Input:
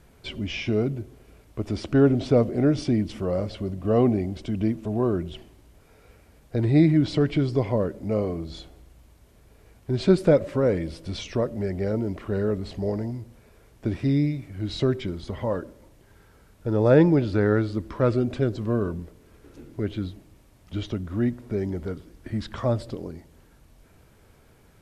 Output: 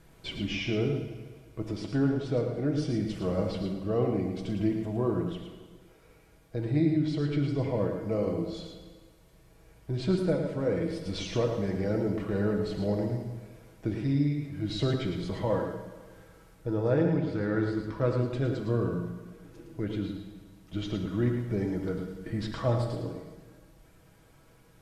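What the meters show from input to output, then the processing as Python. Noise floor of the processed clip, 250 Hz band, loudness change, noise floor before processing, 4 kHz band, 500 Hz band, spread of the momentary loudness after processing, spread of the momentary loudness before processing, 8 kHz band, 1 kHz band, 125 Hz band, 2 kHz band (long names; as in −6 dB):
−58 dBFS, −5.0 dB, −5.5 dB, −56 dBFS, −2.5 dB, −6.0 dB, 13 LU, 15 LU, can't be measured, −4.5 dB, −4.5 dB, −4.5 dB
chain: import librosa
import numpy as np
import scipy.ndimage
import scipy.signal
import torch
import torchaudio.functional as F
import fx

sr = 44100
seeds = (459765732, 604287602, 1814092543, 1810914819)

p1 = x + 0.52 * np.pad(x, (int(6.2 * sr / 1000.0), 0))[:len(x)]
p2 = fx.rider(p1, sr, range_db=5, speed_s=0.5)
p3 = p2 + fx.echo_single(p2, sr, ms=110, db=-6.5, dry=0)
p4 = fx.rev_plate(p3, sr, seeds[0], rt60_s=1.5, hf_ratio=0.95, predelay_ms=0, drr_db=5.0)
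y = p4 * librosa.db_to_amplitude(-8.0)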